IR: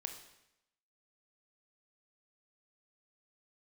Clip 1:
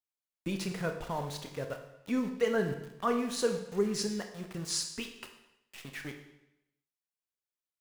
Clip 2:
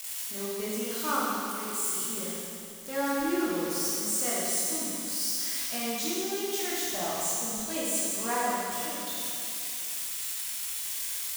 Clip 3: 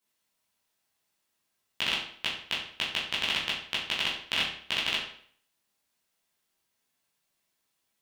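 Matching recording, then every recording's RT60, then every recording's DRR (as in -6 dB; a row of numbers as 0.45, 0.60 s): 1; 0.85, 2.7, 0.55 s; 5.0, -7.5, -8.5 dB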